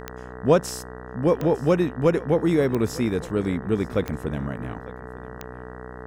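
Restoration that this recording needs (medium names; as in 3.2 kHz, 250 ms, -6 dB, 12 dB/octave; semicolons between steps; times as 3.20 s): de-click; de-hum 62.1 Hz, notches 31; band-stop 440 Hz, Q 30; inverse comb 902 ms -20 dB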